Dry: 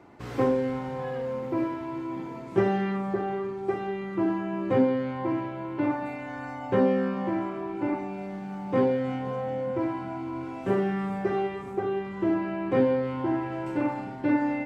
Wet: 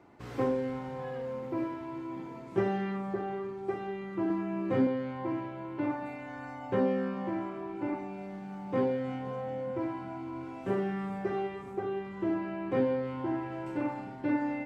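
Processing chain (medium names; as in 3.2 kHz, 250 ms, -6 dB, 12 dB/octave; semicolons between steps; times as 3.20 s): 4.27–4.87 s: doubling 30 ms -4 dB; trim -5.5 dB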